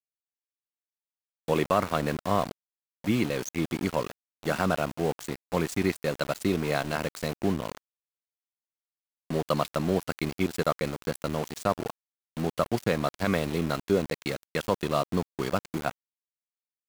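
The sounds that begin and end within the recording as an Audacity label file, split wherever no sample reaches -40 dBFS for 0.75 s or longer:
1.480000	7.770000	sound
9.300000	15.910000	sound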